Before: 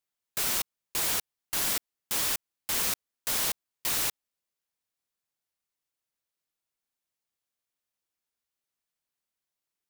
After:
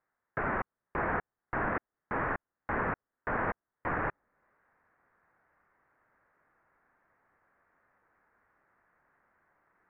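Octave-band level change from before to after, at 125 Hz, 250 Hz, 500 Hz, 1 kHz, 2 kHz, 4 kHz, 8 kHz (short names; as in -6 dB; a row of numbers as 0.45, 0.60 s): +8.0 dB, +7.5 dB, +7.5 dB, +7.5 dB, +3.0 dB, under -30 dB, under -40 dB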